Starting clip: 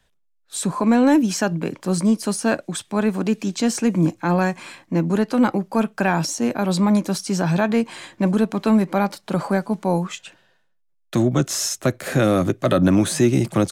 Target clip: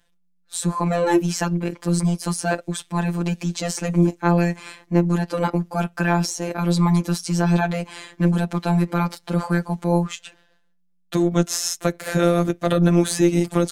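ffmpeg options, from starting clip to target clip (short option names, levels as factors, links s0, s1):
-af "afftfilt=real='hypot(re,im)*cos(PI*b)':imag='0':win_size=1024:overlap=0.75,tremolo=f=180:d=0.333,volume=1.58"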